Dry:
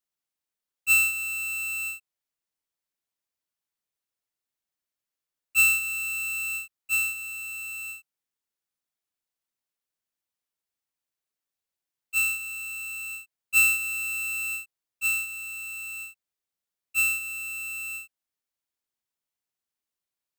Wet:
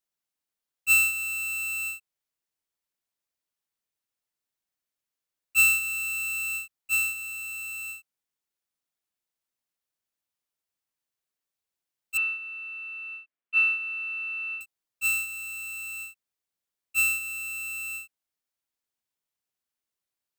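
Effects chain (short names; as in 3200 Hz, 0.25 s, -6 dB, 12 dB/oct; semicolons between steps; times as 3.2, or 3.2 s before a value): 12.17–14.61 speaker cabinet 250–2900 Hz, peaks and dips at 290 Hz +4 dB, 430 Hz -3 dB, 850 Hz -6 dB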